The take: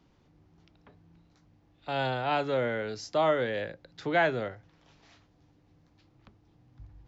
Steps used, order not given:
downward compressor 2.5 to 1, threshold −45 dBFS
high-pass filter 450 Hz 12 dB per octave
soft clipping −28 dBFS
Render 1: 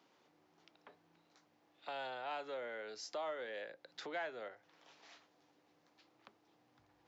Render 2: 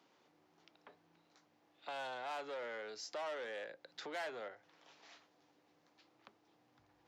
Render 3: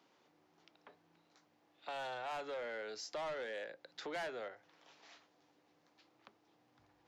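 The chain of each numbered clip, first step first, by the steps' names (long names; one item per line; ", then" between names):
downward compressor, then high-pass filter, then soft clipping
soft clipping, then downward compressor, then high-pass filter
high-pass filter, then soft clipping, then downward compressor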